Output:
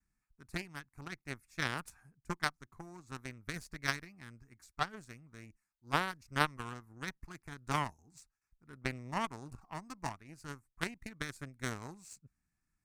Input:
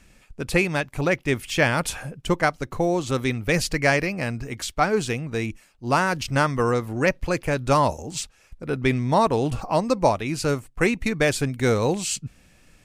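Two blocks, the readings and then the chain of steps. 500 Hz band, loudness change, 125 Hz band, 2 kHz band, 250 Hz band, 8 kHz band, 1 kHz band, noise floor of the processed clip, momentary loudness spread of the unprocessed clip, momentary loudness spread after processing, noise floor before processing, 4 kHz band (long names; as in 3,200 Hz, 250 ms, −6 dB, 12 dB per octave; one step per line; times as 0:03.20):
−24.5 dB, −16.5 dB, −18.5 dB, −14.0 dB, −20.0 dB, −18.0 dB, −15.0 dB, below −85 dBFS, 10 LU, 19 LU, −57 dBFS, −12.5 dB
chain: noise gate with hold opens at −47 dBFS
phaser with its sweep stopped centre 1,300 Hz, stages 4
harmonic generator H 3 −10 dB, 4 −43 dB, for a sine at −8 dBFS
level −1.5 dB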